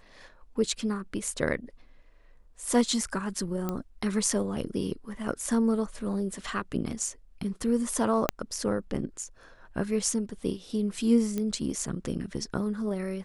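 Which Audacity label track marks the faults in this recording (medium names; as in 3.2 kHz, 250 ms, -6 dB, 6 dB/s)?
3.690000	3.690000	pop -17 dBFS
8.290000	8.290000	pop -8 dBFS
11.380000	11.380000	pop -18 dBFS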